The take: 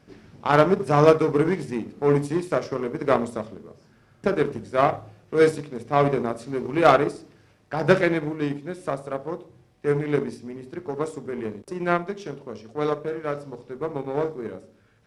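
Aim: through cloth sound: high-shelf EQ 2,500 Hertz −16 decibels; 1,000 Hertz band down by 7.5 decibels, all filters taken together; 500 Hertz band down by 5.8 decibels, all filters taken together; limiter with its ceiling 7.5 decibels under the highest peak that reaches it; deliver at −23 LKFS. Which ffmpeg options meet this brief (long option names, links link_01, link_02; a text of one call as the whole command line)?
ffmpeg -i in.wav -af "equalizer=frequency=500:width_type=o:gain=-5,equalizer=frequency=1000:width_type=o:gain=-5.5,alimiter=limit=-13dB:level=0:latency=1,highshelf=frequency=2500:gain=-16,volume=7.5dB" out.wav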